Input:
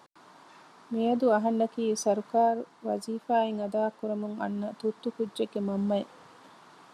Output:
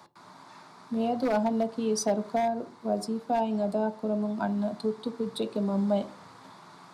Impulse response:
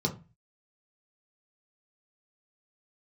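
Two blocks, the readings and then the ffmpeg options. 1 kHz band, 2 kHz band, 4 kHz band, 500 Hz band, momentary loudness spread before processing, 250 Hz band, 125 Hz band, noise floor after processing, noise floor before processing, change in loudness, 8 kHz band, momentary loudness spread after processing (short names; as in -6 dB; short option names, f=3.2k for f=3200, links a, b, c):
-1.0 dB, -1.0 dB, +2.0 dB, -1.5 dB, 9 LU, +2.0 dB, n/a, -52 dBFS, -57 dBFS, 0.0 dB, +2.5 dB, 6 LU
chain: -filter_complex "[0:a]aeval=exprs='0.141*(abs(mod(val(0)/0.141+3,4)-2)-1)':c=same,acrossover=split=150|490[a][b][c];[a]acompressor=threshold=-50dB:ratio=4[d];[b]acompressor=threshold=-31dB:ratio=4[e];[c]acompressor=threshold=-29dB:ratio=4[f];[d][e][f]amix=inputs=3:normalize=0,asplit=2[g][h];[1:a]atrim=start_sample=2205,asetrate=31752,aresample=44100,lowshelf=f=110:g=-9.5[i];[h][i]afir=irnorm=-1:irlink=0,volume=-17dB[j];[g][j]amix=inputs=2:normalize=0,volume=3.5dB"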